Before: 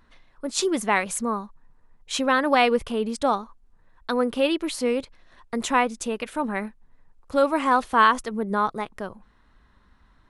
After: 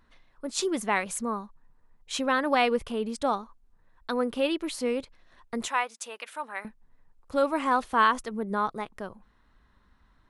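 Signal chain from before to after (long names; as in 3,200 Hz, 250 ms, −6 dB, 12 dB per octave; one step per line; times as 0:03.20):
0:05.68–0:06.65: high-pass filter 790 Hz 12 dB per octave
level −4.5 dB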